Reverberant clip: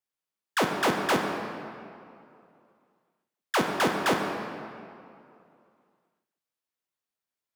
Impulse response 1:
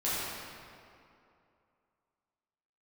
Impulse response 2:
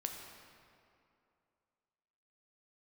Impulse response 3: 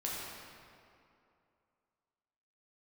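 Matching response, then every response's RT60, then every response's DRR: 2; 2.6, 2.6, 2.6 s; -11.0, 2.0, -5.5 dB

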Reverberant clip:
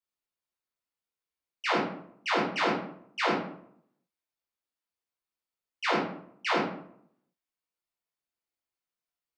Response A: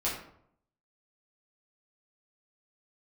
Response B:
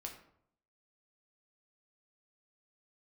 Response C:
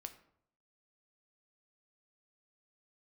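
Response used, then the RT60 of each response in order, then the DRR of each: A; 0.70, 0.70, 0.70 s; -8.0, 1.0, 7.5 dB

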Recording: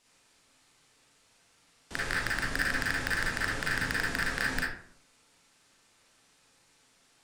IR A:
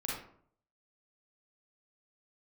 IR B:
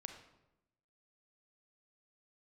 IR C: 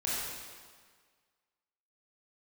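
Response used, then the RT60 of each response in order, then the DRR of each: A; 0.60, 0.90, 1.7 s; -5.0, 5.0, -7.5 dB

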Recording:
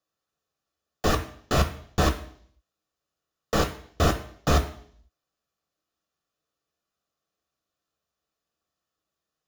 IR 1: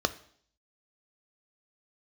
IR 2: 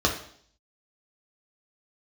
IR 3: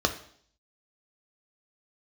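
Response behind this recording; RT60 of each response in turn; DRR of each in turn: 3; 0.60, 0.60, 0.60 s; 11.0, -0.5, 5.0 dB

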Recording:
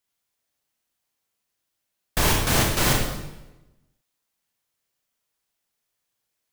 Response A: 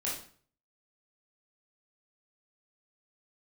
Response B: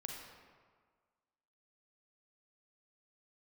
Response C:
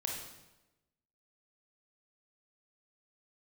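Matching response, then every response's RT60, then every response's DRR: C; 0.45, 1.7, 1.0 s; -6.5, 0.0, -0.5 dB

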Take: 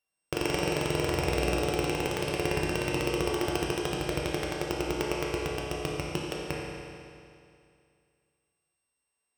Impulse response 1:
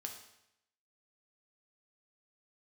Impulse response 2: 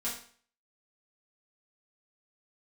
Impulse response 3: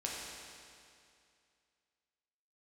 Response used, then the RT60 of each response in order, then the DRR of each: 3; 0.80, 0.50, 2.4 s; 2.5, -9.0, -4.0 dB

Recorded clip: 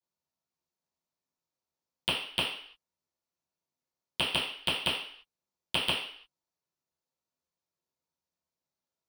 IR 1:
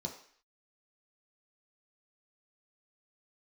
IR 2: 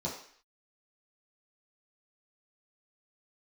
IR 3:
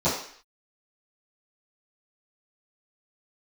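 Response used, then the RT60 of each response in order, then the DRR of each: 3; 0.55, 0.55, 0.55 s; 0.5, -6.0, -15.0 dB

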